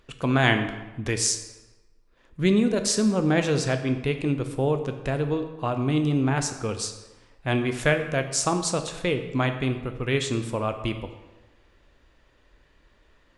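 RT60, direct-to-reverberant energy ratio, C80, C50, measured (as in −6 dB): 1.1 s, 7.0 dB, 11.0 dB, 9.5 dB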